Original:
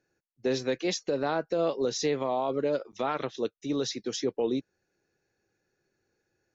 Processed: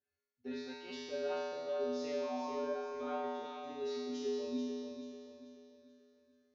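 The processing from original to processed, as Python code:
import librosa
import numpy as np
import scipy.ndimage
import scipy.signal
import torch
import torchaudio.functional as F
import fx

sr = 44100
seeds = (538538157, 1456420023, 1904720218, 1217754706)

y = scipy.signal.sosfilt(scipy.signal.butter(2, 4200.0, 'lowpass', fs=sr, output='sos'), x)
y = fx.comb_fb(y, sr, f0_hz=83.0, decay_s=1.9, harmonics='odd', damping=0.0, mix_pct=100)
y = fx.echo_feedback(y, sr, ms=436, feedback_pct=40, wet_db=-6.5)
y = y * librosa.db_to_amplitude(10.0)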